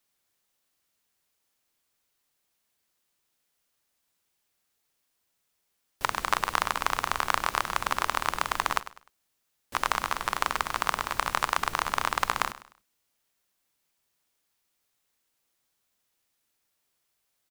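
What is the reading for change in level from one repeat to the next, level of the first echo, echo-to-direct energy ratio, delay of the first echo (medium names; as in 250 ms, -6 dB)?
-10.0 dB, -15.0 dB, -14.5 dB, 101 ms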